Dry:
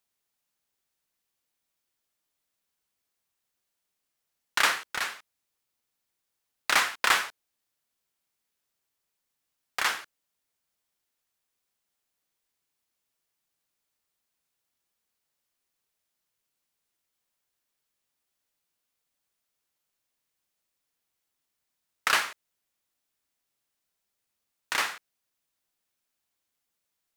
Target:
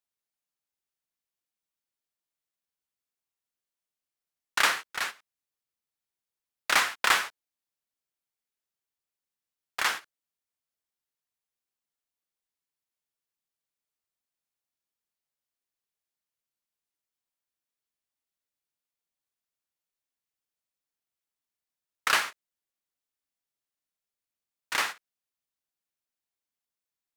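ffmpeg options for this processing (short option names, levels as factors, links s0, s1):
-af "agate=range=0.316:threshold=0.0224:ratio=16:detection=peak"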